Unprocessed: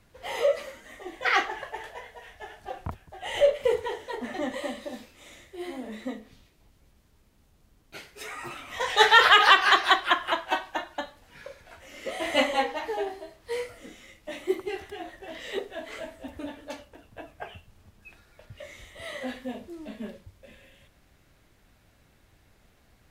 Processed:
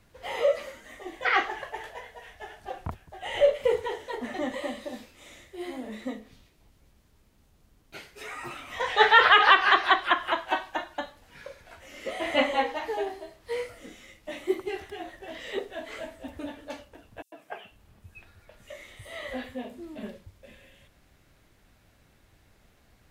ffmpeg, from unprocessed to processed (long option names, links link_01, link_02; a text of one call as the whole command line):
ffmpeg -i in.wav -filter_complex "[0:a]asettb=1/sr,asplit=3[link_01][link_02][link_03];[link_01]atrim=end=17.224[link_04];[link_02]atrim=start=17.22:end=20.03,asetpts=PTS-STARTPTS,afade=type=in:duration=0.004:curve=qsin,afade=type=out:start_time=2.806:duration=0.004:curve=qsin,acrossover=split=170|5700[link_05][link_06][link_07];[link_06]adelay=100[link_08];[link_05]adelay=490[link_09];[link_09][link_08][link_07]amix=inputs=3:normalize=0,atrim=end_sample=123921[link_10];[link_03]atrim=start=20.026[link_11];[link_04][link_10]acrossfade=duration=0.004:curve1=hsin:curve2=qsin[link_12];[link_12][link_11]acrossfade=duration=0.004:curve1=qsin:curve2=hsin,acrossover=split=3700[link_13][link_14];[link_14]acompressor=threshold=-49dB:ratio=4:attack=1:release=60[link_15];[link_13][link_15]amix=inputs=2:normalize=0" out.wav